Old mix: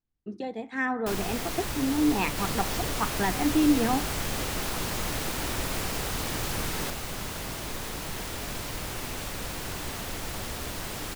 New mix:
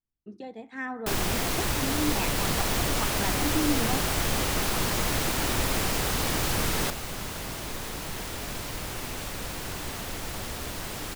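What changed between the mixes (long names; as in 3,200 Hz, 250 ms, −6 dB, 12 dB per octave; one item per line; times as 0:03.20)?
speech −6.0 dB
first sound +5.5 dB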